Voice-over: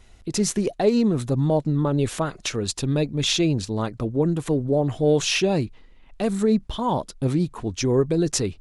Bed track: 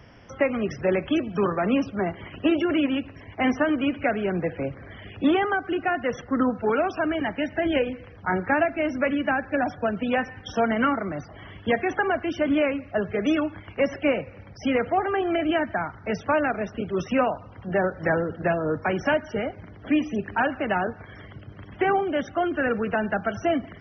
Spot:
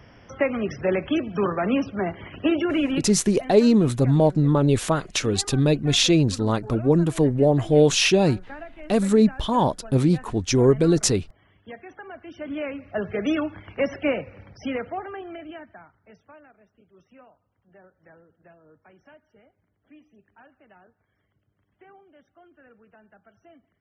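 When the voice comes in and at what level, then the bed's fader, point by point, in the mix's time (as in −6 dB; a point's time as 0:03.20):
2.70 s, +3.0 dB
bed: 0:02.97 0 dB
0:03.31 −17.5 dB
0:12.03 −17.5 dB
0:13.05 −1 dB
0:14.41 −1 dB
0:16.53 −29.5 dB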